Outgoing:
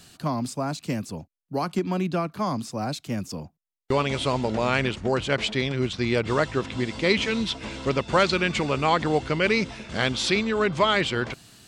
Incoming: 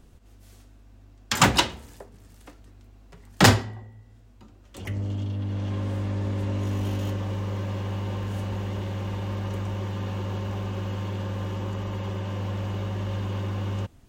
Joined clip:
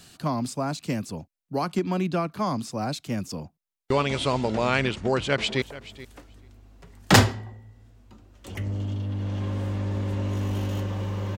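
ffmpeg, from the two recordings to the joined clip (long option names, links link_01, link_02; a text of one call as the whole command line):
ffmpeg -i cue0.wav -i cue1.wav -filter_complex "[0:a]apad=whole_dur=11.37,atrim=end=11.37,atrim=end=5.622[link_01];[1:a]atrim=start=1.918:end=7.67[link_02];[link_01][link_02]acrossfade=duration=0.004:curve1=hsin:curve2=hsin,asplit=2[link_03][link_04];[link_04]afade=type=in:start_time=5.06:duration=0.01,afade=type=out:start_time=5.62:duration=0.01,aecho=0:1:430|860:0.141254|0.0141254[link_05];[link_03][link_05]amix=inputs=2:normalize=0" out.wav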